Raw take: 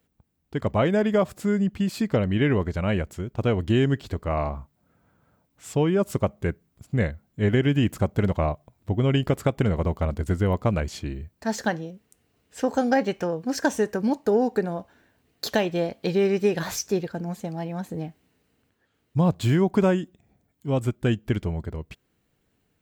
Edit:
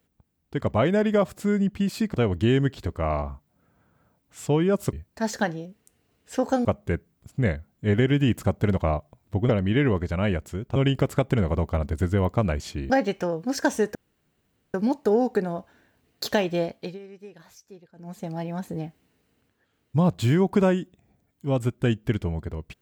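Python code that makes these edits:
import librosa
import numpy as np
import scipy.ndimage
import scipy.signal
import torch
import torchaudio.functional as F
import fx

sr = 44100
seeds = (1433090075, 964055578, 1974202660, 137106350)

y = fx.edit(x, sr, fx.move(start_s=2.14, length_s=1.27, to_s=9.04),
    fx.move(start_s=11.18, length_s=1.72, to_s=6.2),
    fx.insert_room_tone(at_s=13.95, length_s=0.79),
    fx.fade_down_up(start_s=15.84, length_s=1.68, db=-22.0, fade_s=0.36), tone=tone)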